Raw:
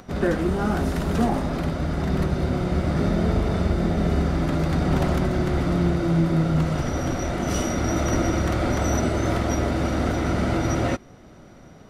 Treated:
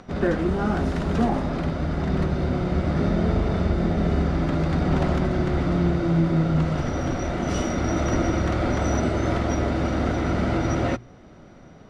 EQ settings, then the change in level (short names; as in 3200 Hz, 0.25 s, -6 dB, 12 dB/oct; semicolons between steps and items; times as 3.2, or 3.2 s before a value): air absorption 79 m; notches 60/120 Hz; 0.0 dB